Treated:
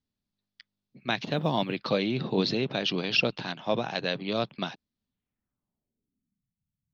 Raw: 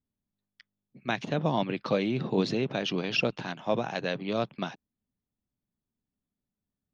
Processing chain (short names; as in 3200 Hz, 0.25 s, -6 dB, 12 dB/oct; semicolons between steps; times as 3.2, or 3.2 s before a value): low-pass sweep 4500 Hz -> 140 Hz, 5.04–6.48; 1.17–1.9 short-mantissa float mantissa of 6-bit